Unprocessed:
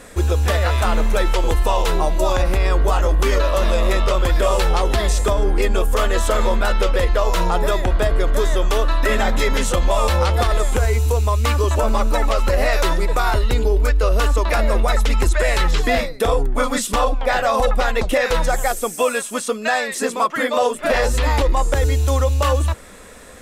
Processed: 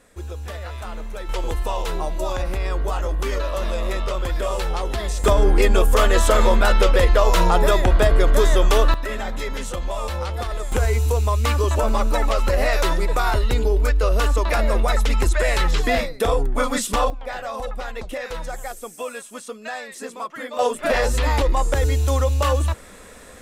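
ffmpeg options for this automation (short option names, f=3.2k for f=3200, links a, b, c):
-af "asetnsamples=n=441:p=0,asendcmd='1.29 volume volume -7dB;5.24 volume volume 2dB;8.94 volume volume -9.5dB;10.72 volume volume -2dB;17.1 volume volume -12dB;20.59 volume volume -2dB',volume=-14.5dB"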